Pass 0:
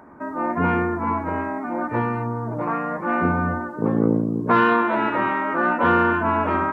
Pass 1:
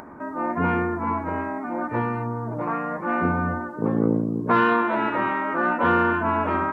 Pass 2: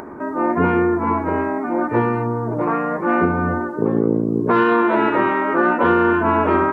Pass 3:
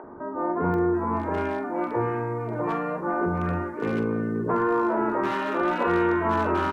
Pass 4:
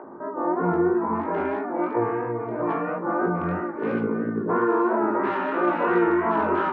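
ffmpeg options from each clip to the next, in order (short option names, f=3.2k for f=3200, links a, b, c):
-af "acompressor=mode=upward:threshold=-33dB:ratio=2.5,volume=-2dB"
-af "equalizer=f=390:t=o:w=0.54:g=8.5,alimiter=limit=-11.5dB:level=0:latency=1:release=321,volume=5dB"
-filter_complex "[0:a]asoftclip=type=hard:threshold=-10dB,asplit=2[a][b];[b]adelay=45,volume=-12dB[c];[a][c]amix=inputs=2:normalize=0,acrossover=split=270|1600[d][e][f];[d]adelay=40[g];[f]adelay=740[h];[g][e][h]amix=inputs=3:normalize=0,volume=-6dB"
-af "highpass=170,lowpass=2.3k,flanger=delay=16.5:depth=6.8:speed=3,volume=4.5dB"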